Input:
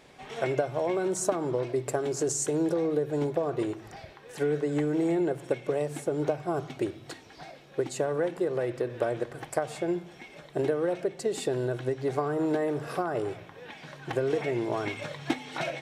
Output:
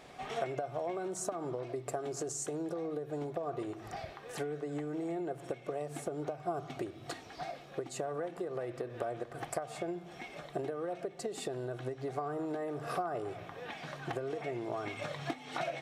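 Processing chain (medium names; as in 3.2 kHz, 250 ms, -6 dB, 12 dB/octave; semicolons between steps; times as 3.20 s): compression 6:1, threshold -36 dBFS, peak gain reduction 15 dB; small resonant body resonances 710/1200 Hz, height 9 dB, ringing for 35 ms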